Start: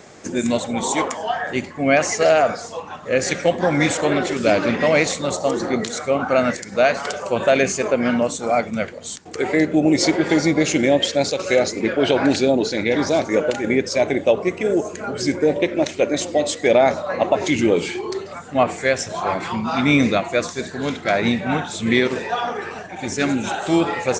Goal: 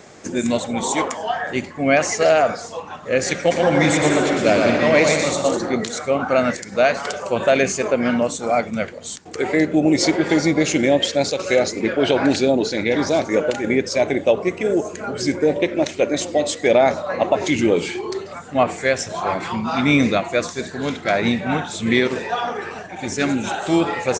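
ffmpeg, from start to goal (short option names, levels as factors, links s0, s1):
-filter_complex "[0:a]asplit=3[s0][s1][s2];[s0]afade=t=out:st=3.5:d=0.02[s3];[s1]aecho=1:1:120|198|248.7|281.7|303.1:0.631|0.398|0.251|0.158|0.1,afade=t=in:st=3.5:d=0.02,afade=t=out:st=5.56:d=0.02[s4];[s2]afade=t=in:st=5.56:d=0.02[s5];[s3][s4][s5]amix=inputs=3:normalize=0"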